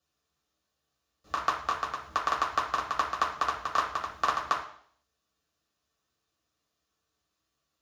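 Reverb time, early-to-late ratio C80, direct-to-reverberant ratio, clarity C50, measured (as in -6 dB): 0.60 s, 10.5 dB, -3.0 dB, 7.0 dB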